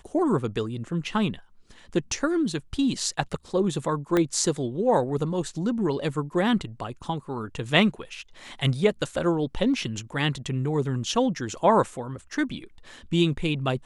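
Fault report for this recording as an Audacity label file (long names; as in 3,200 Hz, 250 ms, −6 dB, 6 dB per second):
4.170000	4.170000	click −11 dBFS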